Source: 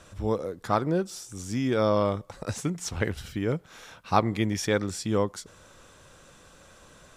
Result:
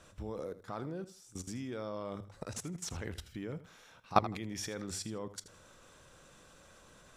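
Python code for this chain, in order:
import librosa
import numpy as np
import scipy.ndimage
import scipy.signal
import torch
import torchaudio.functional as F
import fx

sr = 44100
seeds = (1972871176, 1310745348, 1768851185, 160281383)

y = fx.level_steps(x, sr, step_db=19)
y = fx.hum_notches(y, sr, base_hz=50, count=2)
y = fx.echo_feedback(y, sr, ms=80, feedback_pct=21, wet_db=-15.0)
y = y * 10.0 ** (-2.0 / 20.0)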